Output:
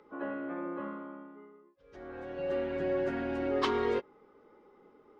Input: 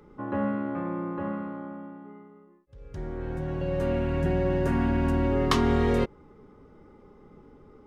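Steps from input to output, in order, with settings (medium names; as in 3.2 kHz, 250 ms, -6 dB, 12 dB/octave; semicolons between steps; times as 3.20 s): three-band isolator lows -21 dB, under 280 Hz, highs -20 dB, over 5.6 kHz; plain phase-vocoder stretch 0.66×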